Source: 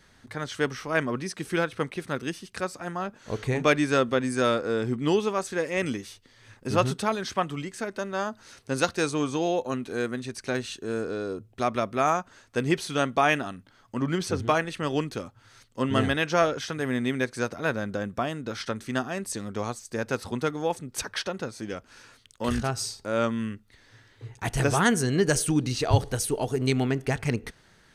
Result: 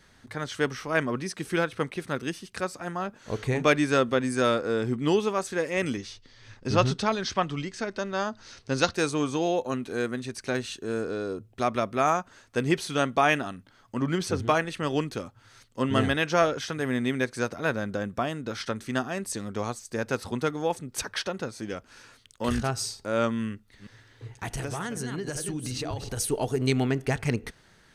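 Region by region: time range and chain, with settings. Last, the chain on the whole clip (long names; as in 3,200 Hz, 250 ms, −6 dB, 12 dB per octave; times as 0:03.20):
0:05.97–0:08.94: low-pass with resonance 5,300 Hz, resonance Q 1.6 + low-shelf EQ 66 Hz +11 dB
0:23.50–0:26.17: delay that plays each chunk backwards 185 ms, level −8.5 dB + downward compressor 12 to 1, threshold −28 dBFS
whole clip: no processing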